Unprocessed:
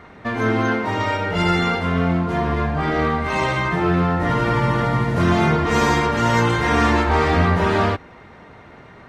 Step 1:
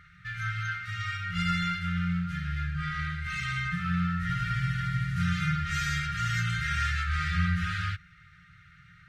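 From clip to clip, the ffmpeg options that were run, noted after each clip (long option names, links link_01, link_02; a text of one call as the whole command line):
ffmpeg -i in.wav -af "afftfilt=real='re*(1-between(b*sr/4096,190,1200))':imag='im*(1-between(b*sr/4096,190,1200))':win_size=4096:overlap=0.75,volume=-8dB" out.wav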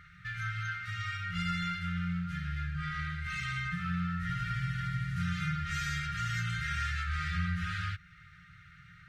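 ffmpeg -i in.wav -af "acompressor=threshold=-39dB:ratio=1.5" out.wav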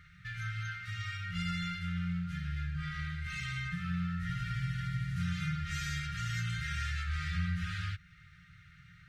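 ffmpeg -i in.wav -af "equalizer=frequency=790:width=0.92:gain=-13" out.wav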